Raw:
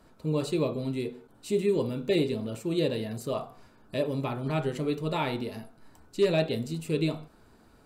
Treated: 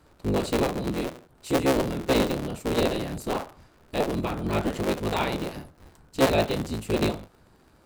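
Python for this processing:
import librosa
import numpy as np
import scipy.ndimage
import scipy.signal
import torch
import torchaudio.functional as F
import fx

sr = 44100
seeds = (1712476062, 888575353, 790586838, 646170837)

p1 = fx.cycle_switch(x, sr, every=3, mode='inverted')
p2 = np.sign(p1) * np.maximum(np.abs(p1) - 10.0 ** (-46.5 / 20.0), 0.0)
y = p1 + (p2 * librosa.db_to_amplitude(-7.5))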